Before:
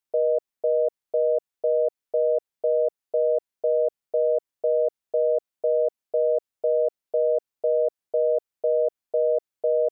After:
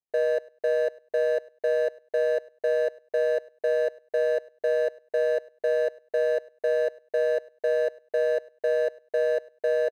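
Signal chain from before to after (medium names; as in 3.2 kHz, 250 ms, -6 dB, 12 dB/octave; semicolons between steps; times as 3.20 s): median filter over 41 samples; on a send: feedback delay 101 ms, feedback 17%, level -22.5 dB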